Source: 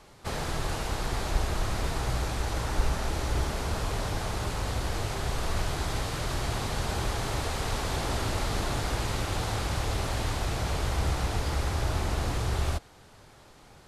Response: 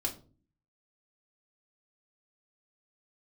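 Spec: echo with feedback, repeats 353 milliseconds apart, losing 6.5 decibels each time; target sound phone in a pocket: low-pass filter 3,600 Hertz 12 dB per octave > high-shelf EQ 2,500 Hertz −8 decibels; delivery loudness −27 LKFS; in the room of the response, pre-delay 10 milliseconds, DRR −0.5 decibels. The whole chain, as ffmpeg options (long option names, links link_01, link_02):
-filter_complex "[0:a]aecho=1:1:353|706|1059|1412|1765|2118:0.473|0.222|0.105|0.0491|0.0231|0.0109,asplit=2[link_01][link_02];[1:a]atrim=start_sample=2205,adelay=10[link_03];[link_02][link_03]afir=irnorm=-1:irlink=0,volume=-2dB[link_04];[link_01][link_04]amix=inputs=2:normalize=0,lowpass=3600,highshelf=frequency=2500:gain=-8,volume=-0.5dB"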